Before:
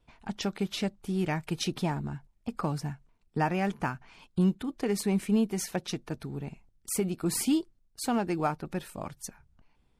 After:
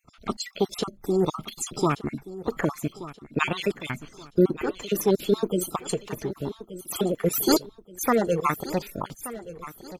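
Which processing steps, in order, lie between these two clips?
random holes in the spectrogram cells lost 42%; formant shift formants +6 st; feedback delay 1177 ms, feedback 37%, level -15.5 dB; trim +7 dB

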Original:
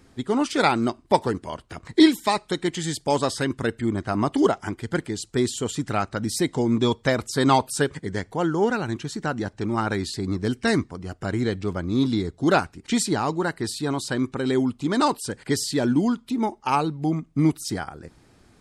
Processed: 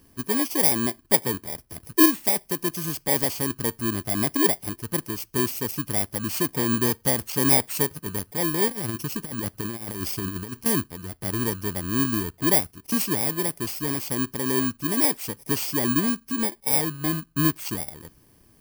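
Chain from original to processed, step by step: bit-reversed sample order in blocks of 32 samples; treble shelf 8.6 kHz +3.5 dB; 8.68–10.66 s: compressor with a negative ratio -27 dBFS, ratio -0.5; trim -2.5 dB

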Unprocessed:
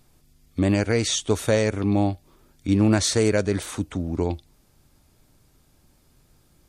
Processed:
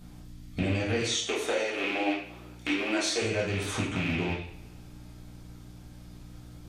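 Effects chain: rattle on loud lows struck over -25 dBFS, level -16 dBFS; 1.00–3.22 s: steep high-pass 280 Hz 36 dB/octave; hum 60 Hz, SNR 25 dB; compression 10:1, threshold -32 dBFS, peak gain reduction 16.5 dB; reverberation, pre-delay 3 ms, DRR -7.5 dB

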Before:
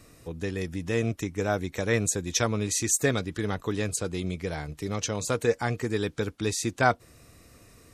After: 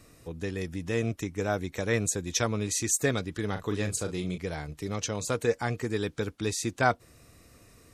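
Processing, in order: 3.52–4.38 s: doubling 39 ms -8 dB; trim -2 dB

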